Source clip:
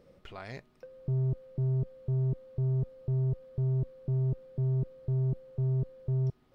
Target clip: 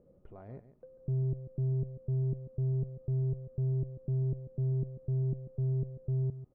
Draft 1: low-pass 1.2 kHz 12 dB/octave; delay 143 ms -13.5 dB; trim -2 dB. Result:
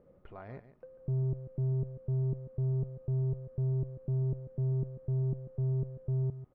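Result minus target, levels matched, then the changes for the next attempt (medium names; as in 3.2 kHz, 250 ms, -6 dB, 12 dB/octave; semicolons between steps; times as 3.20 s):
1 kHz band +6.0 dB
change: low-pass 580 Hz 12 dB/octave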